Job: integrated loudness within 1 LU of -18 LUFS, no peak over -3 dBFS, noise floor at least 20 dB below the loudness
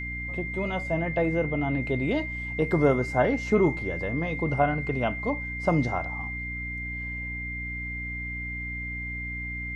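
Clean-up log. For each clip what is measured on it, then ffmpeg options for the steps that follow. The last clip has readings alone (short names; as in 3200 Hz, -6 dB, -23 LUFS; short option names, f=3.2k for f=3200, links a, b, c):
hum 60 Hz; harmonics up to 300 Hz; hum level -34 dBFS; steady tone 2100 Hz; tone level -33 dBFS; loudness -28.0 LUFS; peak -9.0 dBFS; loudness target -18.0 LUFS
-> -af "bandreject=f=60:t=h:w=6,bandreject=f=120:t=h:w=6,bandreject=f=180:t=h:w=6,bandreject=f=240:t=h:w=6,bandreject=f=300:t=h:w=6"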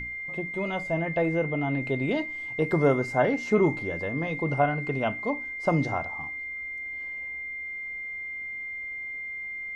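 hum none; steady tone 2100 Hz; tone level -33 dBFS
-> -af "bandreject=f=2.1k:w=30"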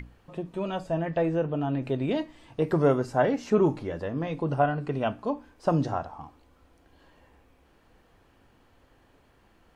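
steady tone none; loudness -28.0 LUFS; peak -10.0 dBFS; loudness target -18.0 LUFS
-> -af "volume=10dB,alimiter=limit=-3dB:level=0:latency=1"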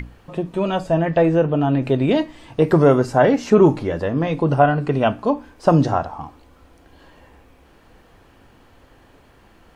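loudness -18.5 LUFS; peak -3.0 dBFS; noise floor -52 dBFS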